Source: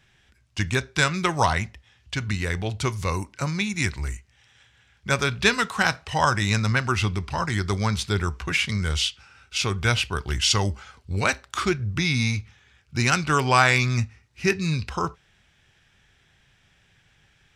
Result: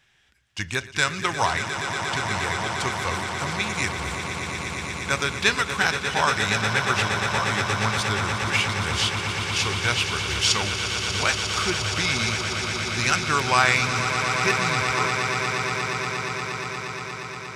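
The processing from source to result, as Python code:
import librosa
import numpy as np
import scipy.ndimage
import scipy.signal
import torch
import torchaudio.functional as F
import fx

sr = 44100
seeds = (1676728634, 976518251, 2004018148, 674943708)

p1 = fx.low_shelf(x, sr, hz=420.0, db=-9.0)
y = p1 + fx.echo_swell(p1, sr, ms=118, loudest=8, wet_db=-10.5, dry=0)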